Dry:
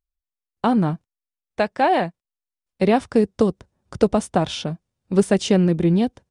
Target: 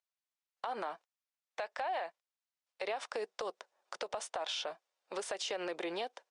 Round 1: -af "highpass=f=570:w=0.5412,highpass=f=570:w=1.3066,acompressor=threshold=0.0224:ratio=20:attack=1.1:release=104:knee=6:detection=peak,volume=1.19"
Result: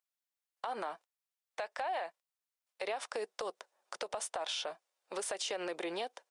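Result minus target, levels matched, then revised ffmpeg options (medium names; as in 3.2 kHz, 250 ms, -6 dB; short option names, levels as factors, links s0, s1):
8 kHz band +3.5 dB
-af "highpass=f=570:w=0.5412,highpass=f=570:w=1.3066,acompressor=threshold=0.0224:ratio=20:attack=1.1:release=104:knee=6:detection=peak,lowpass=6800,volume=1.19"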